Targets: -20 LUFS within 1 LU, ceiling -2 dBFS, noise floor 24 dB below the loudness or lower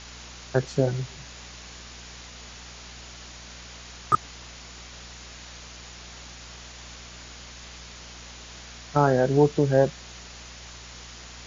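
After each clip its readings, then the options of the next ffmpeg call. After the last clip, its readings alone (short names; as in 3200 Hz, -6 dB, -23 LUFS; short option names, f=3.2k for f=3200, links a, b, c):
hum 60 Hz; harmonics up to 240 Hz; hum level -46 dBFS; noise floor -44 dBFS; noise floor target -48 dBFS; loudness -24.0 LUFS; peak -6.5 dBFS; loudness target -20.0 LUFS
-> -af "bandreject=f=60:t=h:w=4,bandreject=f=120:t=h:w=4,bandreject=f=180:t=h:w=4,bandreject=f=240:t=h:w=4"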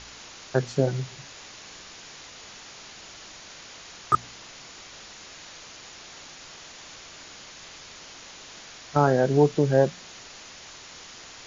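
hum none; noise floor -45 dBFS; noise floor target -48 dBFS
-> -af "afftdn=nr=6:nf=-45"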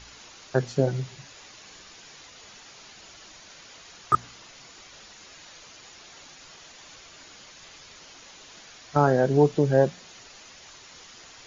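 noise floor -49 dBFS; loudness -24.0 LUFS; peak -6.5 dBFS; loudness target -20.0 LUFS
-> -af "volume=4dB"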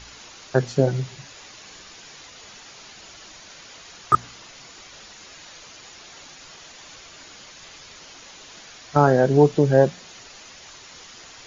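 loudness -20.0 LUFS; peak -2.5 dBFS; noise floor -45 dBFS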